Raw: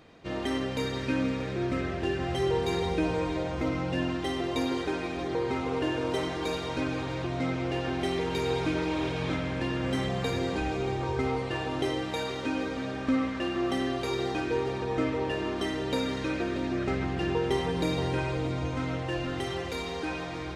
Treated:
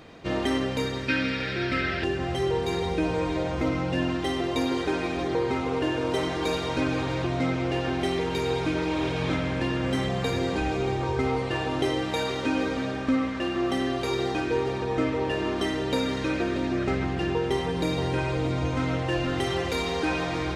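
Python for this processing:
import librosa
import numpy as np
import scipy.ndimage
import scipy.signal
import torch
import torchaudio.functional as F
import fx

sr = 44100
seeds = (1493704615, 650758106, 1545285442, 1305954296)

y = fx.spec_box(x, sr, start_s=1.08, length_s=0.96, low_hz=1300.0, high_hz=5600.0, gain_db=11)
y = fx.rider(y, sr, range_db=5, speed_s=0.5)
y = y * 10.0 ** (3.0 / 20.0)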